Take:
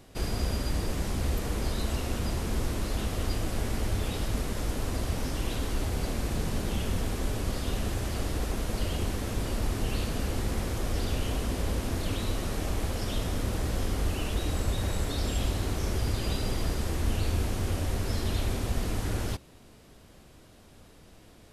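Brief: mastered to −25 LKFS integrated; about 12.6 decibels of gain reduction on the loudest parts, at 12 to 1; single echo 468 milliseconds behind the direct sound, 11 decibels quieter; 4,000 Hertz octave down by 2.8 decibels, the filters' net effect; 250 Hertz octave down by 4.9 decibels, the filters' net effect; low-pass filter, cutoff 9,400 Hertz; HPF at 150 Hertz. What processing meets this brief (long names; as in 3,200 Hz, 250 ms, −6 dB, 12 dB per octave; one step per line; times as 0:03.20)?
high-pass filter 150 Hz
low-pass filter 9,400 Hz
parametric band 250 Hz −5.5 dB
parametric band 4,000 Hz −3.5 dB
downward compressor 12 to 1, threshold −46 dBFS
single-tap delay 468 ms −11 dB
level +24.5 dB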